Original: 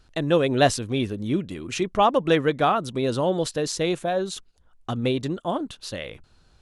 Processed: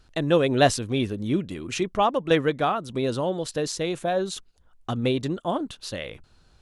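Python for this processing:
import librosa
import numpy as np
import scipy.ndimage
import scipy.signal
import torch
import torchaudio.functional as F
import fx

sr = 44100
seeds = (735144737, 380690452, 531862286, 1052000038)

y = fx.tremolo_shape(x, sr, shape='saw_down', hz=1.7, depth_pct=50, at=(1.72, 3.95))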